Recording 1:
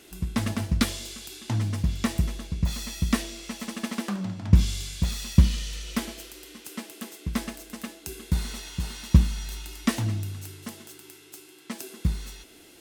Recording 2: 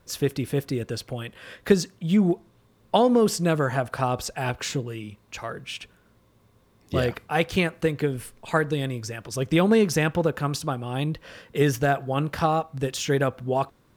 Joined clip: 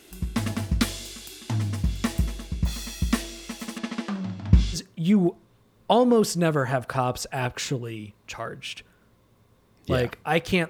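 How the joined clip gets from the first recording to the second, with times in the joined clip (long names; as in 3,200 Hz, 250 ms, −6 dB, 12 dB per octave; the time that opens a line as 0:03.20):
recording 1
0:03.78–0:04.78: low-pass filter 5,200 Hz 12 dB per octave
0:04.75: continue with recording 2 from 0:01.79, crossfade 0.06 s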